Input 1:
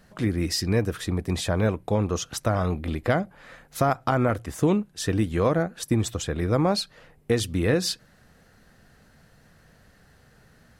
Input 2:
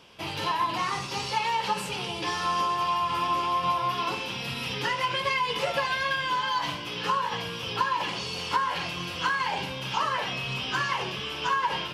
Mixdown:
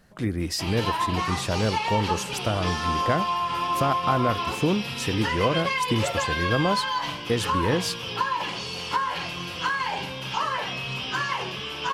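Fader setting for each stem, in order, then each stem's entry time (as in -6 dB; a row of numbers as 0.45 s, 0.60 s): -2.0 dB, +0.5 dB; 0.00 s, 0.40 s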